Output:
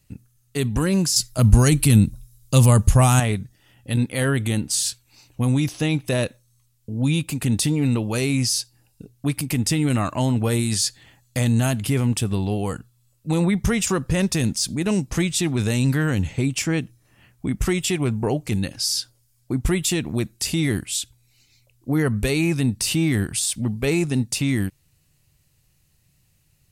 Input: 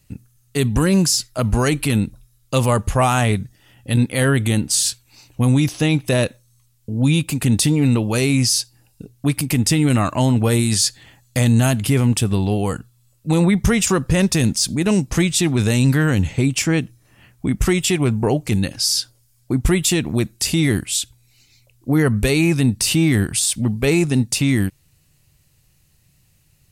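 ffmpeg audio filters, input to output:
-filter_complex "[0:a]asettb=1/sr,asplit=3[a][b][c];[a]atrim=end=1.164[d];[b]atrim=start=1.16:end=3.2,asetpts=PTS-STARTPTS,afade=t=in:d=0.004:c=qsin,afade=t=out:st=2.036:d=0.004:c=qsin,bass=f=250:g=11,treble=f=4k:g=10[e];[c]atrim=start=3.196[f];[d][e]acrossfade=d=0.004:c1=hsin:c2=qsin[g];[g][f]acrossfade=d=0.004:c1=qsin:c2=hsin,volume=-4.5dB"

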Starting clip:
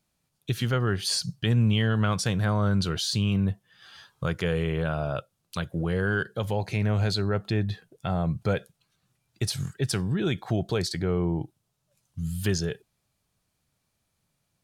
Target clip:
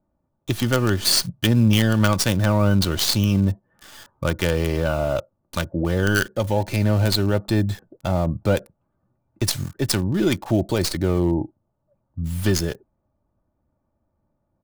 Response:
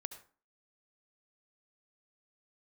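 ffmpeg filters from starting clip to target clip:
-filter_complex "[0:a]aecho=1:1:3.4:0.53,acrossover=split=520|1100[a][b][c];[c]acrusher=bits=5:dc=4:mix=0:aa=0.000001[d];[a][b][d]amix=inputs=3:normalize=0,volume=7dB"

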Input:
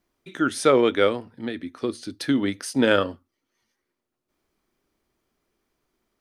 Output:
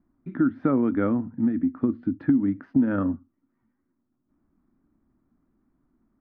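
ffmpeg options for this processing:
-af "lowpass=f=1.5k:w=0.5412,lowpass=f=1.5k:w=1.3066,lowshelf=f=340:t=q:w=3:g=8,acompressor=threshold=-19dB:ratio=5"

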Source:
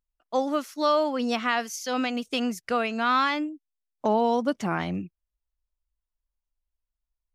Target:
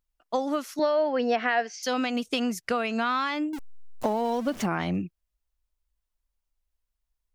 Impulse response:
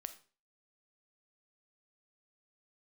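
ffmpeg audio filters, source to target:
-filter_complex "[0:a]asettb=1/sr,asplit=3[a][b][c];[a]atrim=end=3.534[d];[b]atrim=start=3.53:end=4.66,asetpts=PTS-STARTPTS,afade=t=in:d=0.004:c=qsin,afade=t=out:st=1.126:d=0.004:c=qsin,aeval=exprs='val(0)+0.5*0.0178*sgn(val(0))':c=same[e];[c]atrim=start=4.656[f];[d][e]acrossfade=d=0.004:c1=hsin:c2=qsin[g];[g][f]acrossfade=d=0.004:c1=qsin:c2=hsin,acompressor=threshold=-27dB:ratio=6,asettb=1/sr,asplit=3[h][i][j];[h]atrim=end=0.794[k];[i]atrim=start=0.79:end=1.83,asetpts=PTS-STARTPTS,afade=t=in:d=0.004:c=qsin,afade=t=out:st=1.036:d=0.004:c=qsin,highpass=250,equalizer=f=450:t=q:w=4:g=6,equalizer=f=690:t=q:w=4:g=8,equalizer=f=1.2k:t=q:w=4:g=-7,equalizer=f=1.7k:t=q:w=4:g=8,equalizer=f=3.6k:t=q:w=4:g=-7,lowpass=f=4.8k:w=0.5412,lowpass=f=4.8k:w=1.3066[l];[j]atrim=start=1.826[m];[k][l]acrossfade=d=0.004:c1=hsin:c2=qsin[n];[n][m]acrossfade=d=0.004:c1=qsin:c2=hsin,volume=4dB"

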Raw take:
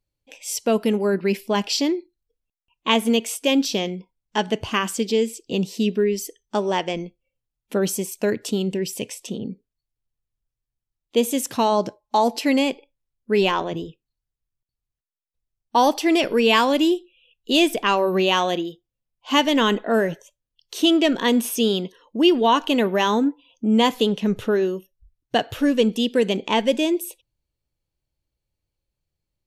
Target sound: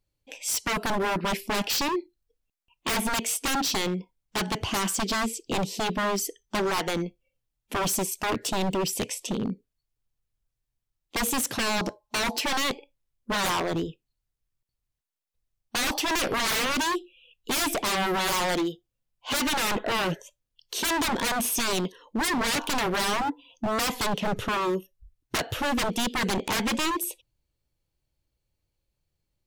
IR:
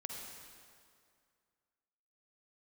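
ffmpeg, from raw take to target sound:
-af "aeval=exprs='0.0708*(abs(mod(val(0)/0.0708+3,4)-2)-1)':c=same,volume=2dB"

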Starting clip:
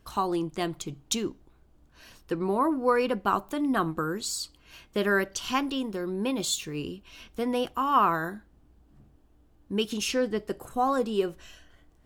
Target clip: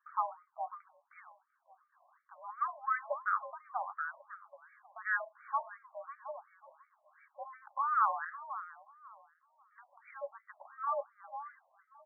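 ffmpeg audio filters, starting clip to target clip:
-filter_complex "[0:a]highpass=f=480:t=q:w=0.5412,highpass=f=480:t=q:w=1.307,lowpass=f=2.1k:t=q:w=0.5176,lowpass=f=2.1k:t=q:w=0.7071,lowpass=f=2.1k:t=q:w=1.932,afreqshift=70,asplit=2[a][b];[b]adelay=546,lowpass=f=1k:p=1,volume=-10.5dB,asplit=2[c][d];[d]adelay=546,lowpass=f=1k:p=1,volume=0.32,asplit=2[e][f];[f]adelay=546,lowpass=f=1k:p=1,volume=0.32[g];[a][c][e][g]amix=inputs=4:normalize=0,afftfilt=real='re*between(b*sr/1024,760*pow(1700/760,0.5+0.5*sin(2*PI*2.8*pts/sr))/1.41,760*pow(1700/760,0.5+0.5*sin(2*PI*2.8*pts/sr))*1.41)':imag='im*between(b*sr/1024,760*pow(1700/760,0.5+0.5*sin(2*PI*2.8*pts/sr))/1.41,760*pow(1700/760,0.5+0.5*sin(2*PI*2.8*pts/sr))*1.41)':win_size=1024:overlap=0.75,volume=-4dB"

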